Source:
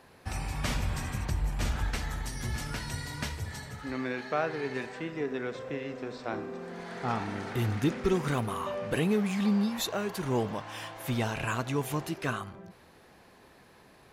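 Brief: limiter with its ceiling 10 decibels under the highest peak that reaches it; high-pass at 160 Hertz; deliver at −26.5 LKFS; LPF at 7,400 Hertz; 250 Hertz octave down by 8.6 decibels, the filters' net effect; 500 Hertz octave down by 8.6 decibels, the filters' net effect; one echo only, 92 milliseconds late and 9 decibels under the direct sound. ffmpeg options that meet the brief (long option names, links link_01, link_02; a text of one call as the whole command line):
ffmpeg -i in.wav -af "highpass=160,lowpass=7400,equalizer=frequency=250:width_type=o:gain=-8,equalizer=frequency=500:width_type=o:gain=-8.5,alimiter=level_in=5dB:limit=-24dB:level=0:latency=1,volume=-5dB,aecho=1:1:92:0.355,volume=13.5dB" out.wav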